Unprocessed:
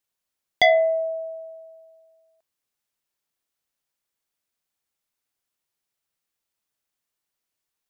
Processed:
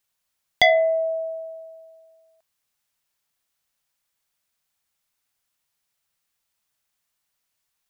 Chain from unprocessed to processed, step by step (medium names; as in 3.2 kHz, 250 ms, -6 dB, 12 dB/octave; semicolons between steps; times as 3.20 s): peaking EQ 360 Hz -7.5 dB 1.2 oct; in parallel at 0 dB: compression, threshold -29 dBFS, peak gain reduction 14 dB